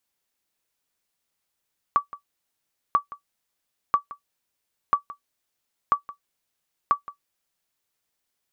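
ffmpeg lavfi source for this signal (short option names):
-f lavfi -i "aevalsrc='0.335*(sin(2*PI*1150*mod(t,0.99))*exp(-6.91*mod(t,0.99)/0.11)+0.119*sin(2*PI*1150*max(mod(t,0.99)-0.17,0))*exp(-6.91*max(mod(t,0.99)-0.17,0)/0.11))':d=5.94:s=44100"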